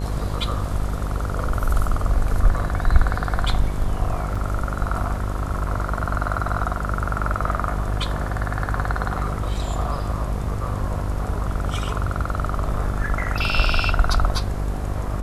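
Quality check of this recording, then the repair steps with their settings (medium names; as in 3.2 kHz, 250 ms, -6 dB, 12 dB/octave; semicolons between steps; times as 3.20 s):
buzz 50 Hz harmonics 23 -26 dBFS
4.35 s: dropout 4.9 ms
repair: de-hum 50 Hz, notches 23; interpolate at 4.35 s, 4.9 ms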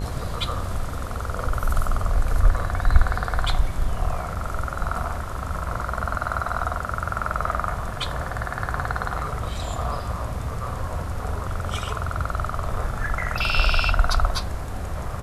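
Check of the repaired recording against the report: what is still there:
nothing left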